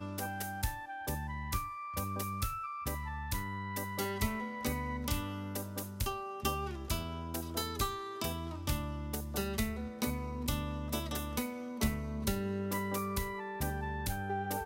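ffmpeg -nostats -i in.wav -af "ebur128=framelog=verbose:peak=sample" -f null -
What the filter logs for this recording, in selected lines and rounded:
Integrated loudness:
  I:         -37.1 LUFS
  Threshold: -47.1 LUFS
Loudness range:
  LRA:         1.6 LU
  Threshold: -57.0 LUFS
  LRA low:   -37.9 LUFS
  LRA high:  -36.3 LUFS
Sample peak:
  Peak:      -18.3 dBFS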